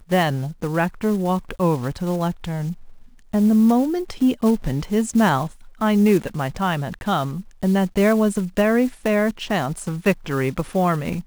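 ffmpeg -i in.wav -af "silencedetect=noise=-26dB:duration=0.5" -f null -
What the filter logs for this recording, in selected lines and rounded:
silence_start: 2.72
silence_end: 3.34 | silence_duration: 0.62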